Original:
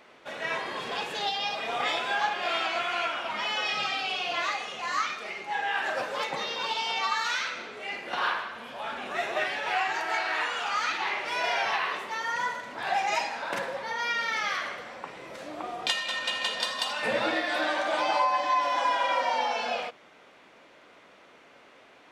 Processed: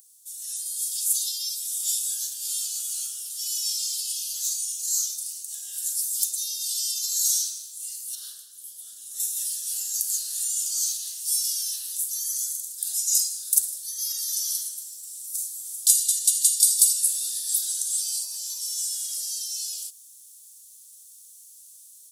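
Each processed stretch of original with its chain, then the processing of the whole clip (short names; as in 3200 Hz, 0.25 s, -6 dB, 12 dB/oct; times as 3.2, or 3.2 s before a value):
8.15–9.2 high shelf 4800 Hz -9 dB + notch 2500 Hz, Q 6.7
whole clip: inverse Chebyshev high-pass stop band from 2400 Hz, stop band 70 dB; AGC gain up to 7 dB; maximiser +31 dB; gain -1 dB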